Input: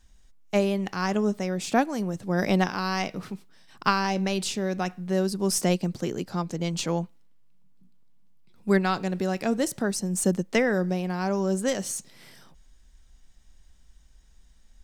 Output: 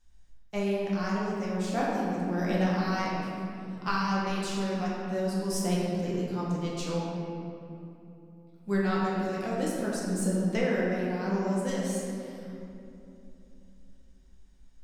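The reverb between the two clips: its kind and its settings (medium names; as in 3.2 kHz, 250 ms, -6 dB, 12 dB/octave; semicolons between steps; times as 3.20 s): simulated room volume 120 m³, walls hard, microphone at 0.8 m; trim -11.5 dB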